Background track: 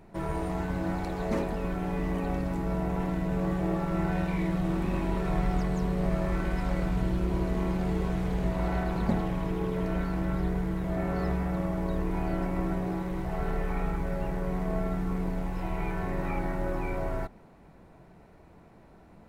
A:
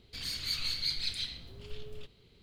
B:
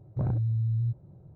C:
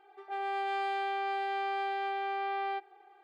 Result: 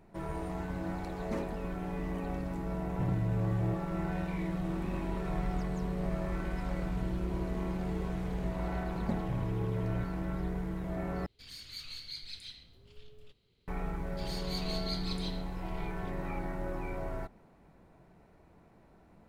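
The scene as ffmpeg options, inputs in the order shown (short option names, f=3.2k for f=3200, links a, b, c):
-filter_complex "[2:a]asplit=2[a][b];[1:a]asplit=2[c][d];[0:a]volume=-6dB,asplit=2[e][f];[e]atrim=end=11.264[g];[c]atrim=end=2.42,asetpts=PTS-STARTPTS,volume=-10.5dB[h];[f]atrim=start=13.676[i];[a]atrim=end=1.35,asetpts=PTS-STARTPTS,volume=-5.5dB,afade=t=in:d=0.004:c=hsin,afade=t=out:st=1.346:d=0.004:c=hsin,adelay=2820[j];[b]atrim=end=1.35,asetpts=PTS-STARTPTS,volume=-9dB,afade=t=in:d=0.004:c=hsin,afade=t=out:st=1.346:d=0.004:c=hsin,adelay=9120[k];[d]atrim=end=2.42,asetpts=PTS-STARTPTS,volume=-7dB,afade=t=in:d=0.004:c=hsin,afade=t=out:st=2.416:d=0.004:c=hsin,adelay=14040[l];[g][h]acrossfade=d=0.004:c1=hsin:c2=hsin[m];[m][i]acrossfade=d=0.004:c1=hsin:c2=hsin[n];[n][j][k][l]amix=inputs=4:normalize=0"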